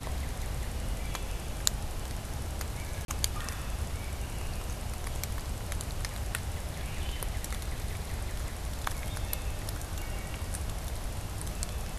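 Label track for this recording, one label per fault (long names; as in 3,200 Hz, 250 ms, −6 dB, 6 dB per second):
3.050000	3.080000	drop-out 32 ms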